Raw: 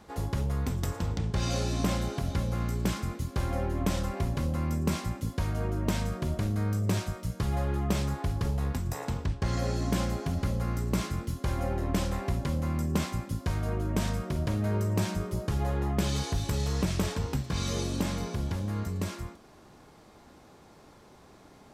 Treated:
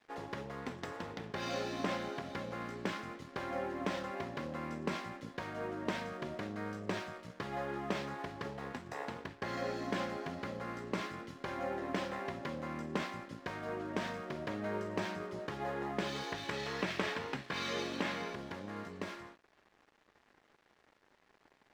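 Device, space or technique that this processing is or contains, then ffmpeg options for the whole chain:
pocket radio on a weak battery: -filter_complex "[0:a]highpass=300,lowpass=3600,aeval=exprs='sgn(val(0))*max(abs(val(0))-0.00178,0)':channel_layout=same,equalizer=frequency=1800:width_type=o:width=0.41:gain=4.5,asettb=1/sr,asplit=3[link_01][link_02][link_03];[link_01]atrim=end=16.324[link_04];[link_02]atrim=start=16.32:end=18.34,asetpts=PTS-STARTPTS,afade=type=in:duration=0.004:curve=qsin,afade=type=out:start_time=2.016:duration=0.004:curve=qsin,equalizer=frequency=2300:width_type=o:width=1.9:gain=5.5[link_05];[link_03]atrim=start=18.336[link_06];[link_04][link_05]acrossfade=duration=0.004:curve1=hsin:curve2=qsin[link_07];[link_07][link_06]acrossfade=duration=0.004:curve1=qsin:curve2=hsin,volume=-2dB"

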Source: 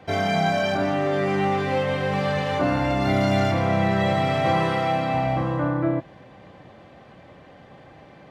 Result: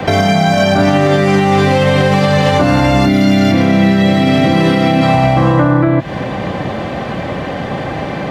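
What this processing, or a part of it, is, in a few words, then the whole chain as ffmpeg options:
mastering chain: -filter_complex "[0:a]asplit=3[link_01][link_02][link_03];[link_01]afade=type=out:start_time=3.05:duration=0.02[link_04];[link_02]equalizer=frequency=125:width_type=o:width=1:gain=-6,equalizer=frequency=250:width_type=o:width=1:gain=12,equalizer=frequency=1000:width_type=o:width=1:gain=-7,equalizer=frequency=8000:width_type=o:width=1:gain=-6,afade=type=in:start_time=3.05:duration=0.02,afade=type=out:start_time=5.01:duration=0.02[link_05];[link_03]afade=type=in:start_time=5.01:duration=0.02[link_06];[link_04][link_05][link_06]amix=inputs=3:normalize=0,equalizer=frequency=210:width_type=o:width=0.77:gain=2.5,acrossover=split=180|1100|3800[link_07][link_08][link_09][link_10];[link_07]acompressor=threshold=-33dB:ratio=4[link_11];[link_08]acompressor=threshold=-31dB:ratio=4[link_12];[link_09]acompressor=threshold=-41dB:ratio=4[link_13];[link_10]acompressor=threshold=-44dB:ratio=4[link_14];[link_11][link_12][link_13][link_14]amix=inputs=4:normalize=0,acompressor=threshold=-33dB:ratio=6,alimiter=level_in=27.5dB:limit=-1dB:release=50:level=0:latency=1,volume=-1dB"

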